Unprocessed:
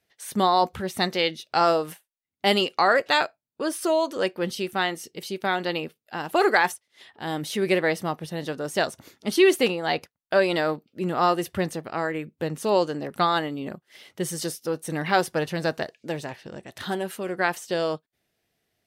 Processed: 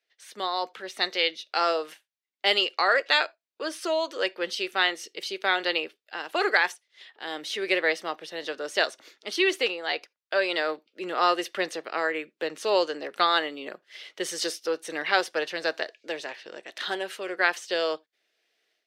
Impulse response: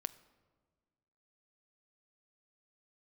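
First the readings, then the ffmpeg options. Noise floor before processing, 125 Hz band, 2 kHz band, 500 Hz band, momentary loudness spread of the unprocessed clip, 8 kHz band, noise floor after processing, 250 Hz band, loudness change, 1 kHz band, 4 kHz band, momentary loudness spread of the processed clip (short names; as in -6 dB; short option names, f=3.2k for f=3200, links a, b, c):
-83 dBFS, under -20 dB, +1.5 dB, -4.0 dB, 13 LU, -3.5 dB, -84 dBFS, -8.5 dB, -2.0 dB, -4.0 dB, +2.0 dB, 12 LU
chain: -filter_complex "[0:a]equalizer=f=840:t=o:w=1.3:g=-9,asplit=2[a][b];[1:a]atrim=start_sample=2205,atrim=end_sample=3969[c];[b][c]afir=irnorm=-1:irlink=0,volume=-2.5dB[d];[a][d]amix=inputs=2:normalize=0,dynaudnorm=f=520:g=3:m=11.5dB,highpass=300,acrossover=split=390 6100:gain=0.0891 1 0.141[e][f][g];[e][f][g]amix=inputs=3:normalize=0,volume=-6dB"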